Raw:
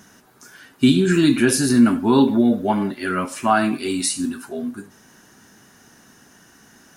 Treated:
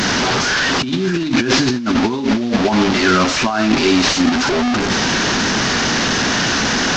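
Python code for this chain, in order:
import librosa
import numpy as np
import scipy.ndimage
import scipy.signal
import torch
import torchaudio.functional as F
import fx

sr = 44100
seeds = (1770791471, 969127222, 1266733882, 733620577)

y = fx.delta_mod(x, sr, bps=32000, step_db=-20.0)
y = fx.hum_notches(y, sr, base_hz=50, count=4)
y = fx.over_compress(y, sr, threshold_db=-22.0, ratio=-1.0)
y = F.gain(torch.from_numpy(y), 7.0).numpy()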